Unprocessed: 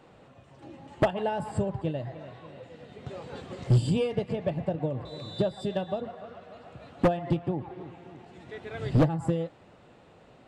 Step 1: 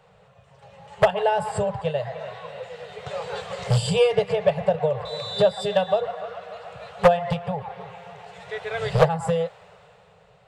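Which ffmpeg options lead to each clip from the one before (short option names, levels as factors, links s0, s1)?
-filter_complex "[0:a]acrossover=split=350[s0][s1];[s1]dynaudnorm=f=110:g=17:m=3.98[s2];[s0][s2]amix=inputs=2:normalize=0,afftfilt=real='re*(1-between(b*sr/4096,200,400))':imag='im*(1-between(b*sr/4096,200,400))':win_size=4096:overlap=0.75"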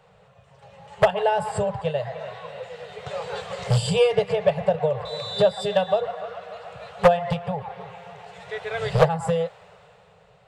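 -af anull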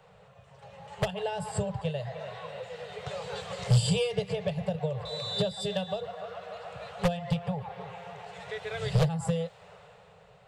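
-filter_complex "[0:a]acrossover=split=300|3000[s0][s1][s2];[s1]acompressor=threshold=0.0126:ratio=2.5[s3];[s0][s3][s2]amix=inputs=3:normalize=0,volume=0.891"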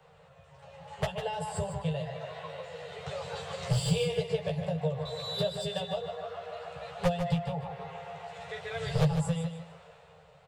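-filter_complex "[0:a]acrossover=split=190|2100[s0][s1][s2];[s2]asoftclip=type=tanh:threshold=0.0335[s3];[s0][s1][s3]amix=inputs=3:normalize=0,asplit=2[s4][s5];[s5]adelay=13,volume=0.708[s6];[s4][s6]amix=inputs=2:normalize=0,aecho=1:1:151|302|453:0.376|0.0902|0.0216,volume=0.708"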